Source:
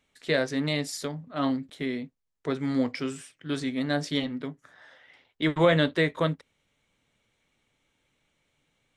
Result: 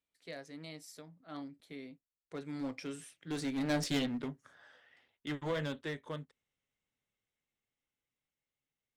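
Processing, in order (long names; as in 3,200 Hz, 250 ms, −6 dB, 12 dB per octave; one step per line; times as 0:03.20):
source passing by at 0:03.90, 19 m/s, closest 7.3 metres
high-shelf EQ 7,300 Hz +5 dB
asymmetric clip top −33 dBFS
level −1 dB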